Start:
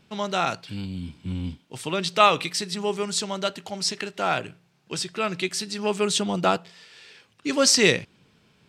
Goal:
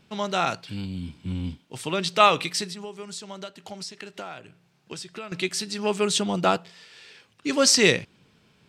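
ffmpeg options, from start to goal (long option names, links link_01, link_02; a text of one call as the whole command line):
ffmpeg -i in.wav -filter_complex "[0:a]asettb=1/sr,asplit=3[link_01][link_02][link_03];[link_01]atrim=end=2.664[link_04];[link_02]atrim=start=2.66:end=5.32,asetpts=PTS-STARTPTS,afade=type=in:duration=0.004:curve=qsin,afade=type=out:start_time=2.656:duration=0.004:curve=qsin,acompressor=threshold=-34dB:ratio=12[link_05];[link_03]atrim=start=5.316[link_06];[link_04][link_05]acrossfade=duration=0.004:curve1=hsin:curve2=qsin[link_07];[link_07][link_06]acrossfade=duration=0.004:curve1=qsin:curve2=hsin" out.wav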